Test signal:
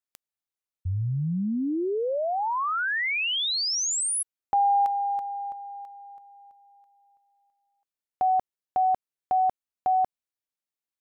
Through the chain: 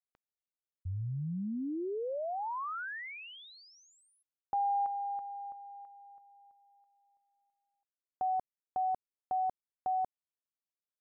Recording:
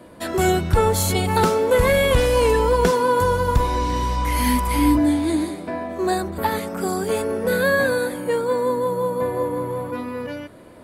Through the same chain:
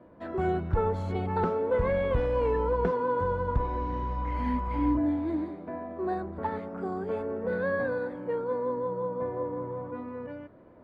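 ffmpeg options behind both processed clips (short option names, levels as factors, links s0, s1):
-af "lowpass=1400,volume=0.355"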